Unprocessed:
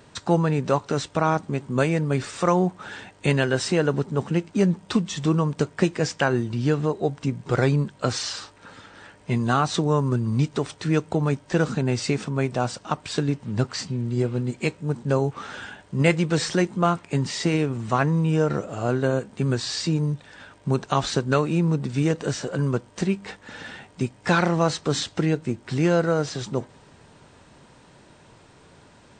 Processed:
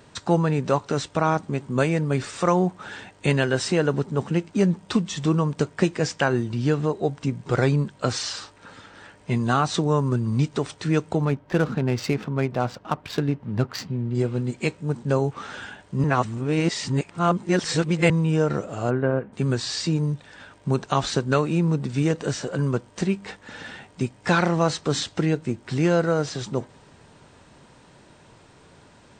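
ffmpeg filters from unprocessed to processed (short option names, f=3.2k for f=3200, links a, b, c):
-filter_complex "[0:a]asettb=1/sr,asplit=3[a][b][c];[a]atrim=end=11.254[d];[b]atrim=start=11.25:end=14.15,asetpts=PTS-STARTPTS,afade=t=in:d=0.004:c=qsin,afade=t=out:st=2.896:d=0.004:c=qsin,adynamicsmooth=sensitivity=5:basefreq=1.9k[e];[c]atrim=start=14.146[f];[d][e]acrossfade=d=0.004:c1=hsin:c2=qsin[g];[g][f]acrossfade=d=0.004:c1=qsin:c2=hsin,asplit=3[h][i][j];[h]afade=t=out:st=18.89:d=0.02[k];[i]lowpass=f=2.3k:w=0.5412,lowpass=f=2.3k:w=1.3066,afade=t=in:st=18.89:d=0.02,afade=t=out:st=19.32:d=0.02[l];[j]afade=t=in:st=19.32:d=0.02[m];[k][l][m]amix=inputs=3:normalize=0,asplit=3[n][o][p];[n]atrim=end=16.042[q];[o]atrim=start=16.038:end=18.102,asetpts=PTS-STARTPTS,areverse[r];[p]atrim=start=18.098[s];[q][r]acrossfade=d=0.004:c1=hsin:c2=hsin[t];[t][s]acrossfade=d=0.004:c1=hsin:c2=hsin"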